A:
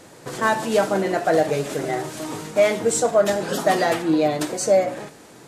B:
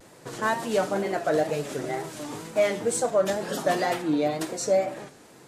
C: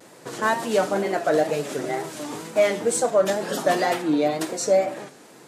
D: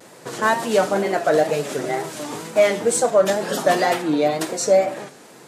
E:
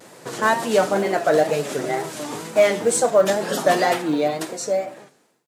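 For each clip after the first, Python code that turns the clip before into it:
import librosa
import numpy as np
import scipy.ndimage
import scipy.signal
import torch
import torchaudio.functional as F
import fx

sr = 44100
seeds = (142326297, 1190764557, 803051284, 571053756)

y1 = fx.vibrato(x, sr, rate_hz=2.1, depth_cents=97.0)
y1 = y1 * librosa.db_to_amplitude(-5.5)
y2 = scipy.signal.sosfilt(scipy.signal.butter(2, 160.0, 'highpass', fs=sr, output='sos'), y1)
y2 = y2 * librosa.db_to_amplitude(3.5)
y3 = fx.peak_eq(y2, sr, hz=300.0, db=-3.0, octaves=0.4)
y3 = y3 * librosa.db_to_amplitude(3.5)
y4 = fx.fade_out_tail(y3, sr, length_s=1.57)
y4 = fx.quant_companded(y4, sr, bits=8)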